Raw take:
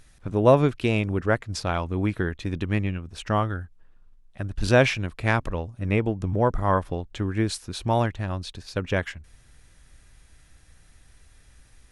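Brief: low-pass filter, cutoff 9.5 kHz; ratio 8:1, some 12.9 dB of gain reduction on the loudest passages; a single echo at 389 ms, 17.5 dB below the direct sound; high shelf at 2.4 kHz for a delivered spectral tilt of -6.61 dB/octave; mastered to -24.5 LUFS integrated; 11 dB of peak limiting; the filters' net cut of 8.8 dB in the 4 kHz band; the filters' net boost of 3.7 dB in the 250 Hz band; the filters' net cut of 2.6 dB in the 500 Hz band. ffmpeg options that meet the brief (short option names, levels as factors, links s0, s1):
-af "lowpass=9500,equalizer=f=250:t=o:g=6,equalizer=f=500:t=o:g=-4.5,highshelf=f=2400:g=-3.5,equalizer=f=4000:t=o:g=-8.5,acompressor=threshold=0.0562:ratio=8,alimiter=level_in=1.26:limit=0.0631:level=0:latency=1,volume=0.794,aecho=1:1:389:0.133,volume=4.22"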